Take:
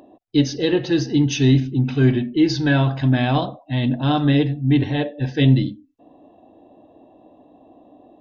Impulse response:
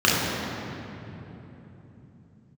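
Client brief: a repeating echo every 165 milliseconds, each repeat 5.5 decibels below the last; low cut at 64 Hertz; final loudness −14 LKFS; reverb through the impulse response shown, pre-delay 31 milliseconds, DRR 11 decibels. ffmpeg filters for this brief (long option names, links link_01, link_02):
-filter_complex "[0:a]highpass=64,aecho=1:1:165|330|495|660|825|990|1155:0.531|0.281|0.149|0.079|0.0419|0.0222|0.0118,asplit=2[link_01][link_02];[1:a]atrim=start_sample=2205,adelay=31[link_03];[link_02][link_03]afir=irnorm=-1:irlink=0,volume=-32.5dB[link_04];[link_01][link_04]amix=inputs=2:normalize=0,volume=2.5dB"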